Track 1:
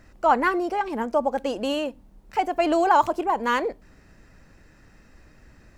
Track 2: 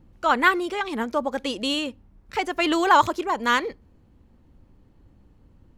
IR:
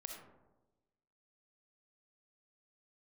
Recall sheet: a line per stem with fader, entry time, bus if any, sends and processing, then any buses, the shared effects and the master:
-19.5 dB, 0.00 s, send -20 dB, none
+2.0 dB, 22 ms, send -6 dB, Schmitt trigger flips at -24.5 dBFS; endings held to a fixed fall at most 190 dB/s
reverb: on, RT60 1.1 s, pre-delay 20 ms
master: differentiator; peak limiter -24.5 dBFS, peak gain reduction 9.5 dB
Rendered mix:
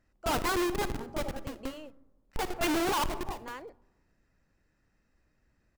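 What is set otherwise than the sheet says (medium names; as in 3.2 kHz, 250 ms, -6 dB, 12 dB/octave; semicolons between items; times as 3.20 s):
stem 1: send off; master: missing differentiator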